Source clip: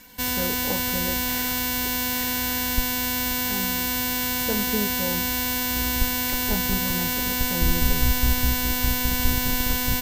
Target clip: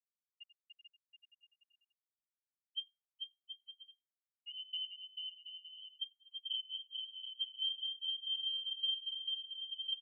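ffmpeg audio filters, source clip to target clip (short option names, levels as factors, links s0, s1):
-filter_complex "[0:a]afftfilt=real='re*gte(hypot(re,im),0.447)':imag='im*gte(hypot(re,im),0.447)':win_size=1024:overlap=0.75,highpass=61,alimiter=level_in=1.58:limit=0.0631:level=0:latency=1:release=482,volume=0.631,crystalizer=i=9.5:c=0,asplit=2[s0][s1];[s1]adelay=90,highpass=300,lowpass=3400,asoftclip=type=hard:threshold=0.75,volume=0.398[s2];[s0][s2]amix=inputs=2:normalize=0,asetrate=32097,aresample=44100,atempo=1.37395,tremolo=f=0.79:d=0.78,asplit=2[s3][s4];[s4]aecho=0:1:440|726|911.9|1033|1111:0.631|0.398|0.251|0.158|0.1[s5];[s3][s5]amix=inputs=2:normalize=0,adynamicsmooth=sensitivity=2:basefreq=640,lowpass=f=2700:t=q:w=0.5098,lowpass=f=2700:t=q:w=0.6013,lowpass=f=2700:t=q:w=0.9,lowpass=f=2700:t=q:w=2.563,afreqshift=-3200,volume=0.841"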